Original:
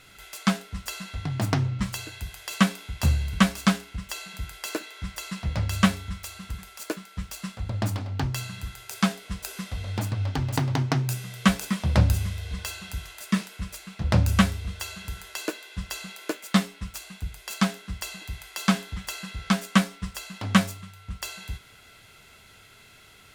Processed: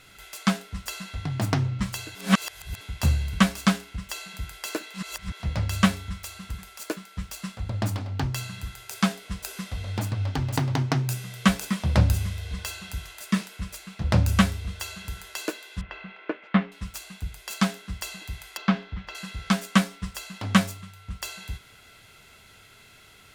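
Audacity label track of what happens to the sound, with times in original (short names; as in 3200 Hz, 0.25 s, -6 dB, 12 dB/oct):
2.150000	2.810000	reverse
4.940000	5.400000	reverse
15.810000	16.720000	LPF 2600 Hz 24 dB/oct
18.570000	19.150000	air absorption 260 m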